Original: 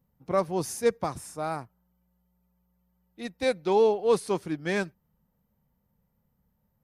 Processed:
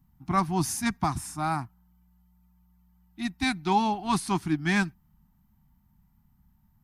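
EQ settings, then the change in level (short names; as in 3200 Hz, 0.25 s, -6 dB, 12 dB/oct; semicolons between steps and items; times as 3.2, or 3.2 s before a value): Chebyshev band-stop 300–810 Hz, order 2; low shelf 93 Hz +9.5 dB; +5.5 dB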